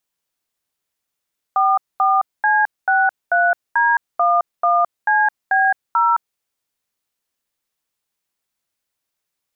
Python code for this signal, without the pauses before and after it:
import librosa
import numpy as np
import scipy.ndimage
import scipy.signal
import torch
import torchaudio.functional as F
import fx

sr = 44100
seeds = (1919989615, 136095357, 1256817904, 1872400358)

y = fx.dtmf(sr, digits='44C63D11CB0', tone_ms=215, gap_ms=224, level_db=-15.0)